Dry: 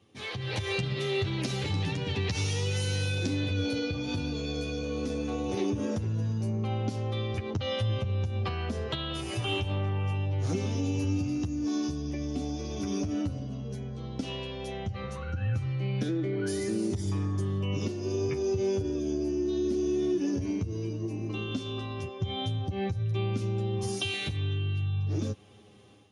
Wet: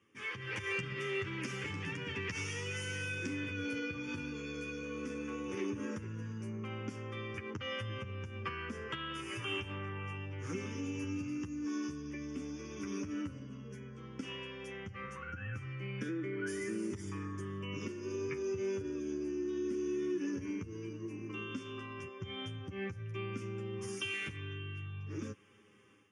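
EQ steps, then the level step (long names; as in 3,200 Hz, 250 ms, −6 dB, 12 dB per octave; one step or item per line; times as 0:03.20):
high-pass filter 610 Hz 6 dB per octave
high-frequency loss of the air 59 metres
phaser with its sweep stopped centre 1,700 Hz, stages 4
+2.0 dB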